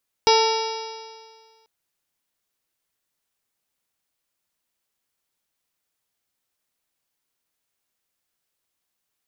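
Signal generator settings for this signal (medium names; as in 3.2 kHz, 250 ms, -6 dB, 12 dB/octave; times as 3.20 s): stretched partials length 1.39 s, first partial 443 Hz, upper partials 0.5/-12.5/-19/-10/-10.5/-13/-9.5/-13.5/-4/-10.5 dB, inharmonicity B 0.003, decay 1.78 s, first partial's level -16 dB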